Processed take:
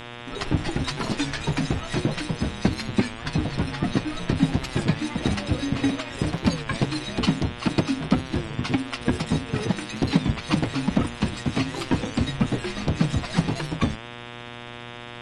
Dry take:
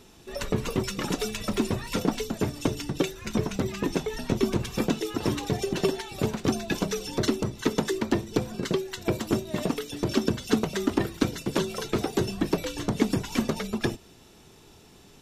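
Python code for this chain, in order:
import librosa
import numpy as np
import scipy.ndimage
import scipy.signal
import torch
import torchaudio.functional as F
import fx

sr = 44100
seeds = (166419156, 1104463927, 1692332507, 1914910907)

y = fx.pitch_heads(x, sr, semitones=-6.0)
y = fx.dmg_buzz(y, sr, base_hz=120.0, harmonics=31, level_db=-43.0, tilt_db=-2, odd_only=False)
y = fx.record_warp(y, sr, rpm=33.33, depth_cents=160.0)
y = y * librosa.db_to_amplitude(4.0)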